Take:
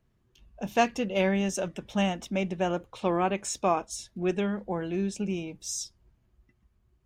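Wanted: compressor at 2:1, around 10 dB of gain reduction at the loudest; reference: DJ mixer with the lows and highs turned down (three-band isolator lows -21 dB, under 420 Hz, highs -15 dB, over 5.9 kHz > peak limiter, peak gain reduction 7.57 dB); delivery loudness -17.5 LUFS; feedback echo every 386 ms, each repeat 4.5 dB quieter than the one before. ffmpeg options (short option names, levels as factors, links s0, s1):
-filter_complex "[0:a]acompressor=threshold=0.0158:ratio=2,acrossover=split=420 5900:gain=0.0891 1 0.178[s0][s1][s2];[s0][s1][s2]amix=inputs=3:normalize=0,aecho=1:1:386|772|1158|1544|1930|2316|2702|3088|3474:0.596|0.357|0.214|0.129|0.0772|0.0463|0.0278|0.0167|0.01,volume=15,alimiter=limit=0.562:level=0:latency=1"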